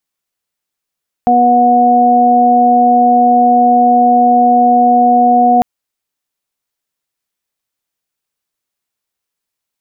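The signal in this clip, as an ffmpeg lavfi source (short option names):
-f lavfi -i "aevalsrc='0.237*sin(2*PI*243*t)+0.119*sin(2*PI*486*t)+0.473*sin(2*PI*729*t)':d=4.35:s=44100"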